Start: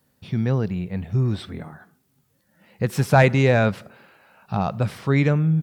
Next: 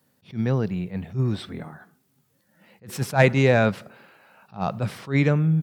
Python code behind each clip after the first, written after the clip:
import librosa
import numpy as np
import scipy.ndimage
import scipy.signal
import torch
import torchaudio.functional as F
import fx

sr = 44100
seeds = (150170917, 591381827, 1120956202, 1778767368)

y = scipy.signal.sosfilt(scipy.signal.butter(2, 110.0, 'highpass', fs=sr, output='sos'), x)
y = fx.attack_slew(y, sr, db_per_s=240.0)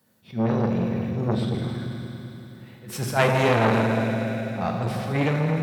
y = fx.rev_fdn(x, sr, rt60_s=3.4, lf_ratio=1.0, hf_ratio=1.0, size_ms=27.0, drr_db=-0.5)
y = fx.transformer_sat(y, sr, knee_hz=1400.0)